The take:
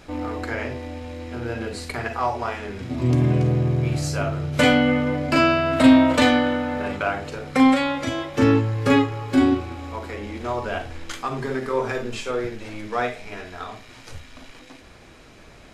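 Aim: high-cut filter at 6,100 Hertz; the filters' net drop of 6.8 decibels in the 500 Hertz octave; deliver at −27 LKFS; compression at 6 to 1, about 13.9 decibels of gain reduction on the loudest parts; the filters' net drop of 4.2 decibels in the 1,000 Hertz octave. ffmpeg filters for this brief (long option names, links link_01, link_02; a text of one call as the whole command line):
ffmpeg -i in.wav -af "lowpass=6100,equalizer=frequency=500:width_type=o:gain=-8,equalizer=frequency=1000:width_type=o:gain=-3,acompressor=threshold=-26dB:ratio=6,volume=4.5dB" out.wav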